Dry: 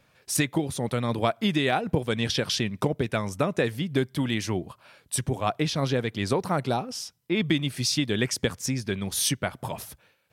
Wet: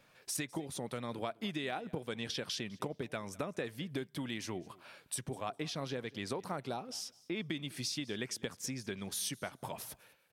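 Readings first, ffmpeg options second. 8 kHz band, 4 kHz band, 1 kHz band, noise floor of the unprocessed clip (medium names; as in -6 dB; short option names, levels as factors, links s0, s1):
-10.5 dB, -11.5 dB, -12.5 dB, -65 dBFS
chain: -filter_complex "[0:a]equalizer=f=64:w=0.62:g=-10,acompressor=threshold=0.0112:ratio=2.5,asplit=2[s0][s1];[s1]aecho=0:1:203|406:0.075|0.0135[s2];[s0][s2]amix=inputs=2:normalize=0,volume=0.841"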